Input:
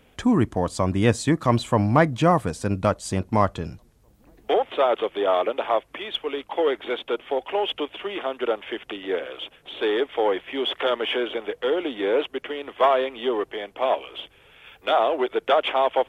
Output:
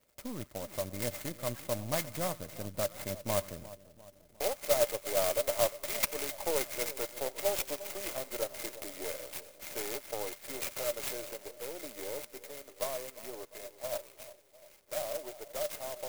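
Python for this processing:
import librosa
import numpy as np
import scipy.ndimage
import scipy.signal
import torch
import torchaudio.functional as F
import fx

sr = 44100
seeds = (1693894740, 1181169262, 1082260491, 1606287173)

y = np.where(x < 0.0, 10.0 ** (-7.0 / 20.0) * x, x)
y = fx.doppler_pass(y, sr, speed_mps=7, closest_m=6.5, pass_at_s=6.25)
y = fx.dynamic_eq(y, sr, hz=480.0, q=0.77, threshold_db=-41.0, ratio=4.0, max_db=-4)
y = fx.sample_hold(y, sr, seeds[0], rate_hz=5700.0, jitter_pct=0)
y = fx.peak_eq(y, sr, hz=2500.0, db=10.5, octaves=0.66)
y = fx.echo_split(y, sr, split_hz=1100.0, low_ms=352, high_ms=89, feedback_pct=52, wet_db=-16.0)
y = fx.rider(y, sr, range_db=3, speed_s=2.0)
y = fx.small_body(y, sr, hz=(590.0, 2100.0), ring_ms=65, db=18)
y = fx.dmg_crackle(y, sr, seeds[1], per_s=120.0, level_db=-46.0)
y = fx.clock_jitter(y, sr, seeds[2], jitter_ms=0.11)
y = y * librosa.db_to_amplitude(-5.5)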